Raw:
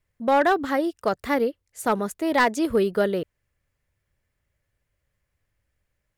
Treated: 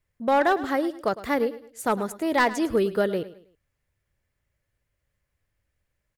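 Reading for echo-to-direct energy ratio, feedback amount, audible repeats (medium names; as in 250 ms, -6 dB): -15.5 dB, 34%, 3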